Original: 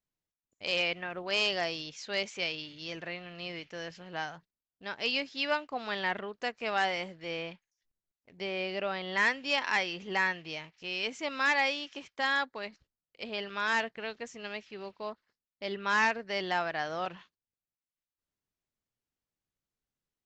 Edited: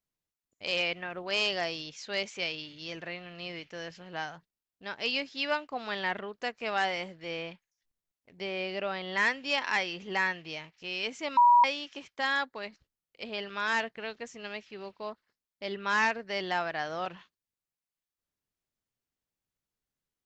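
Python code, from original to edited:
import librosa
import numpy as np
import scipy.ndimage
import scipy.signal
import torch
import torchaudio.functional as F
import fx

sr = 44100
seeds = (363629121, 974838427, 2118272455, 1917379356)

y = fx.edit(x, sr, fx.bleep(start_s=11.37, length_s=0.27, hz=965.0, db=-16.0), tone=tone)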